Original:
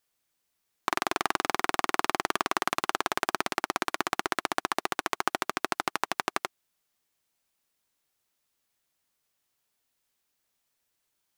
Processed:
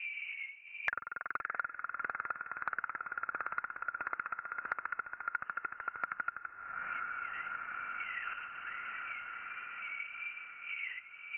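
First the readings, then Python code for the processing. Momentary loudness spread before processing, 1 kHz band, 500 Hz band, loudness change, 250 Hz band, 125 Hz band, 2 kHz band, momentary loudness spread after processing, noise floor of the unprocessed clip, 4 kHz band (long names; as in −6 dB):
3 LU, −8.5 dB, −20.5 dB, −9.5 dB, −24.0 dB, below −15 dB, −3.5 dB, 4 LU, −79 dBFS, below −15 dB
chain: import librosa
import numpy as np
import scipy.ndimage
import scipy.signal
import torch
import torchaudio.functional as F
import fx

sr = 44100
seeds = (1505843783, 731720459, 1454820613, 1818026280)

p1 = fx.dmg_wind(x, sr, seeds[0], corner_hz=120.0, level_db=-43.0)
p2 = scipy.signal.sosfilt(scipy.signal.butter(2, 84.0, 'highpass', fs=sr, output='sos'), p1)
p3 = fx.peak_eq(p2, sr, hz=1100.0, db=-3.0, octaves=0.3)
p4 = 10.0 ** (-21.0 / 20.0) * (np.abs((p3 / 10.0 ** (-21.0 / 20.0) + 3.0) % 4.0 - 2.0) - 1.0)
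p5 = fx.auto_wah(p4, sr, base_hz=500.0, top_hz=1500.0, q=18.0, full_db=-34.5, direction='up')
p6 = fx.chopper(p5, sr, hz=1.5, depth_pct=60, duty_pct=50)
p7 = p6 + fx.echo_diffused(p6, sr, ms=729, feedback_pct=46, wet_db=-13.5, dry=0)
p8 = fx.freq_invert(p7, sr, carrier_hz=2900)
p9 = fx.band_squash(p8, sr, depth_pct=100)
y = F.gain(torch.from_numpy(p9), 16.5).numpy()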